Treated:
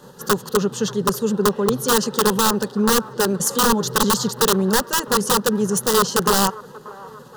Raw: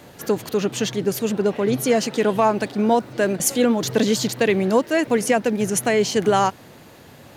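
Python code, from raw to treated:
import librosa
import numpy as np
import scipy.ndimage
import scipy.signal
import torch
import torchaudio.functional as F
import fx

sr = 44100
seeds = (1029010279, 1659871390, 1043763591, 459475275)

p1 = fx.high_shelf(x, sr, hz=9400.0, db=-7.0)
p2 = fx.level_steps(p1, sr, step_db=9)
p3 = p1 + (p2 * 10.0 ** (0.5 / 20.0))
p4 = (np.mod(10.0 ** (7.0 / 20.0) * p3 + 1.0, 2.0) - 1.0) / 10.0 ** (7.0 / 20.0)
p5 = fx.fixed_phaser(p4, sr, hz=450.0, stages=8)
p6 = fx.echo_wet_bandpass(p5, sr, ms=584, feedback_pct=56, hz=820.0, wet_db=-18.0)
y = p6 * 10.0 ** (-1.0 / 20.0)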